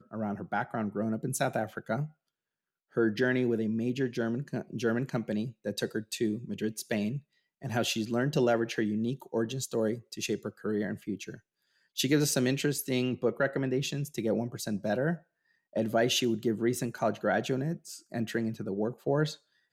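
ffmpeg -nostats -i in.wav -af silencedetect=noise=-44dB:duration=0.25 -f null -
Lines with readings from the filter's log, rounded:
silence_start: 2.07
silence_end: 2.96 | silence_duration: 0.89
silence_start: 7.19
silence_end: 7.62 | silence_duration: 0.43
silence_start: 11.37
silence_end: 11.97 | silence_duration: 0.60
silence_start: 15.18
silence_end: 15.76 | silence_duration: 0.58
silence_start: 19.35
silence_end: 19.72 | silence_duration: 0.37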